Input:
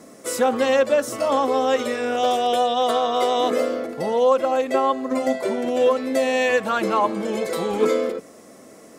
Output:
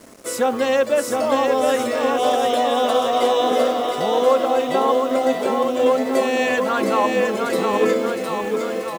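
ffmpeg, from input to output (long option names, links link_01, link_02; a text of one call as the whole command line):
ffmpeg -i in.wav -af "aecho=1:1:710|1349|1924|2442|2908:0.631|0.398|0.251|0.158|0.1,acrusher=bits=6:mix=0:aa=0.5" out.wav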